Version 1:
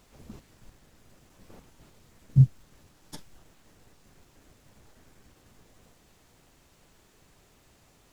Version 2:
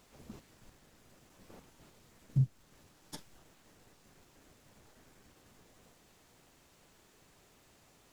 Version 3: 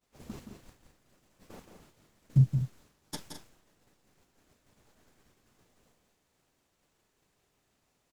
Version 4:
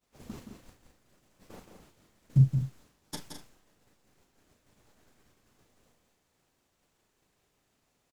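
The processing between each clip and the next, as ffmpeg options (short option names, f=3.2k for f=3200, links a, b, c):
-af "lowshelf=f=110:g=-7.5,alimiter=limit=-18dB:level=0:latency=1:release=356,volume=-2dB"
-filter_complex "[0:a]agate=range=-33dB:threshold=-52dB:ratio=3:detection=peak,asplit=2[a][b];[b]aecho=0:1:172|212.8:0.447|0.282[c];[a][c]amix=inputs=2:normalize=0,volume=6.5dB"
-filter_complex "[0:a]asplit=2[a][b];[b]adelay=37,volume=-11dB[c];[a][c]amix=inputs=2:normalize=0"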